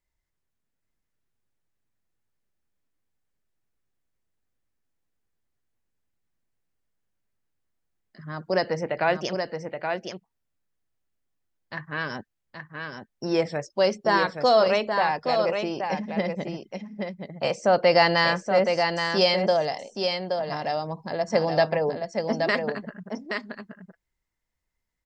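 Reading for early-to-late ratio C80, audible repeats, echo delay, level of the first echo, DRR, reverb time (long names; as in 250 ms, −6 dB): no reverb audible, 1, 824 ms, −5.5 dB, no reverb audible, no reverb audible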